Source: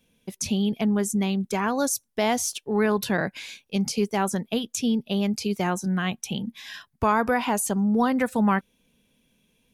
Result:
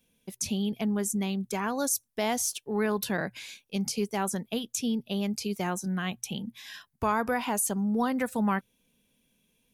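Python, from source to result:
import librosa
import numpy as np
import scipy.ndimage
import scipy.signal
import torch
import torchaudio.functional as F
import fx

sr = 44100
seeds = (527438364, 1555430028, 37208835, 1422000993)

y = fx.high_shelf(x, sr, hz=7600.0, db=8.0)
y = fx.hum_notches(y, sr, base_hz=60, count=2)
y = y * librosa.db_to_amplitude(-5.5)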